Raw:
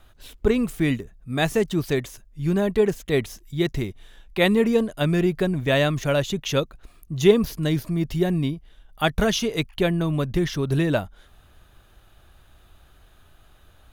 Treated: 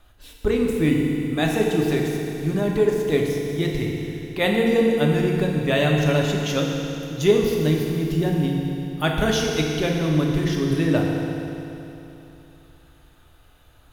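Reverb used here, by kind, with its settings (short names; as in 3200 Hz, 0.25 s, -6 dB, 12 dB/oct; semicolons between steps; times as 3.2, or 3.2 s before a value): FDN reverb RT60 3.1 s, high-frequency decay 0.95×, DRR -1 dB; gain -2.5 dB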